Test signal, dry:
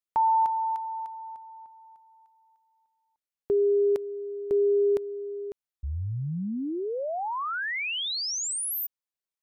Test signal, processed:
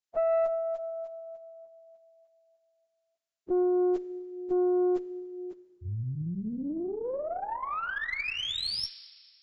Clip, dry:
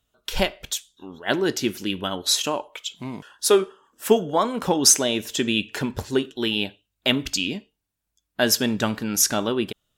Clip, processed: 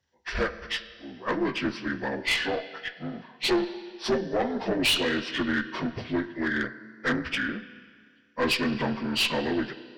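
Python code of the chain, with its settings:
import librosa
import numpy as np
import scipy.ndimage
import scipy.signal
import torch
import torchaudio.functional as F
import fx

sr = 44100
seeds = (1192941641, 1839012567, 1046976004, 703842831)

y = fx.partial_stretch(x, sr, pct=76)
y = fx.rev_schroeder(y, sr, rt60_s=1.9, comb_ms=28, drr_db=13.5)
y = fx.tube_stage(y, sr, drive_db=19.0, bias=0.45)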